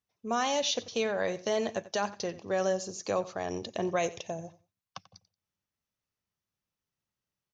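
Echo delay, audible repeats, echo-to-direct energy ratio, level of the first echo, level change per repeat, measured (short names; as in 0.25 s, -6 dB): 90 ms, 2, -17.5 dB, -17.5 dB, -14.0 dB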